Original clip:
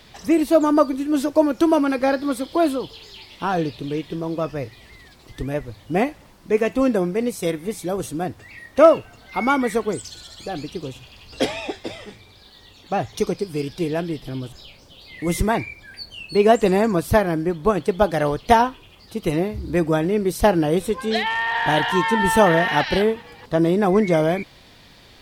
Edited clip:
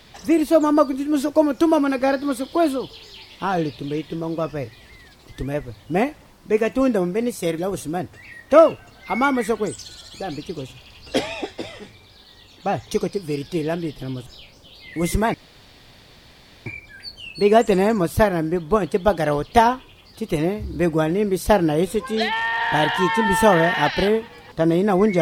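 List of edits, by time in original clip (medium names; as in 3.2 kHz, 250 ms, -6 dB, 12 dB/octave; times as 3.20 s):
7.58–7.84 s: delete
15.60 s: insert room tone 1.32 s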